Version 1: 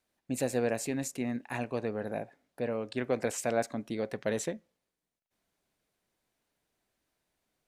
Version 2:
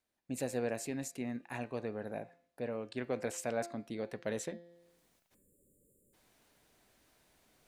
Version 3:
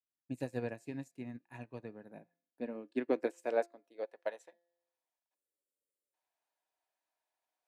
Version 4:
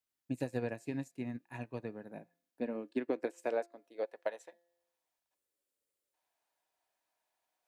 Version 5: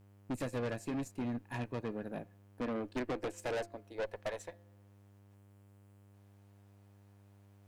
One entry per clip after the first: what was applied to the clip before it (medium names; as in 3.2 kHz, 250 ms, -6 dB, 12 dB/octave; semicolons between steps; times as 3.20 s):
spectral selection erased 5.35–6.14 s, 590–6900 Hz; de-hum 171.9 Hz, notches 29; reverse; upward compressor, threshold -48 dBFS; reverse; trim -5.5 dB
high-pass sweep 110 Hz -> 720 Hz, 1.60–4.44 s; small resonant body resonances 310/940/1700/2500 Hz, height 7 dB; upward expansion 2.5:1, over -44 dBFS; trim +2 dB
compression 5:1, threshold -35 dBFS, peak gain reduction 9.5 dB; trim +4.5 dB
valve stage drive 42 dB, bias 0.45; mains buzz 100 Hz, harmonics 33, -70 dBFS -8 dB/octave; trim +9 dB